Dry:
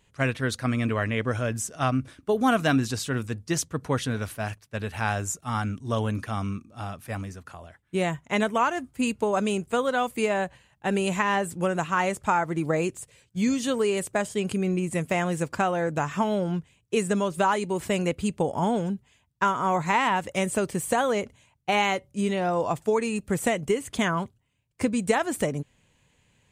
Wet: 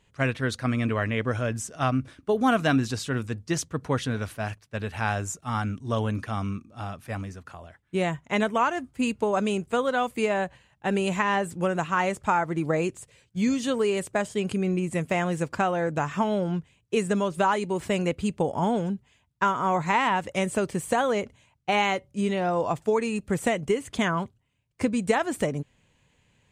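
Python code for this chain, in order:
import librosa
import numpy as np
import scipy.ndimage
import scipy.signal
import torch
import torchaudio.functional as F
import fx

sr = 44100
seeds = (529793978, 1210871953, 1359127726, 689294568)

y = fx.high_shelf(x, sr, hz=10000.0, db=-10.5)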